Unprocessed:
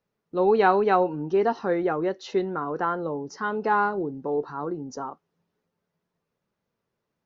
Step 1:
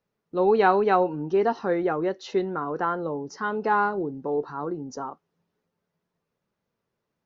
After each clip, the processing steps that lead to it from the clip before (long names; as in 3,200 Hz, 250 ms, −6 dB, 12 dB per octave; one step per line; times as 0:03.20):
no processing that can be heard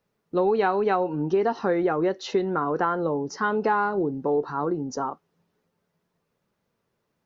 downward compressor 6 to 1, threshold −24 dBFS, peak gain reduction 10 dB
level +5 dB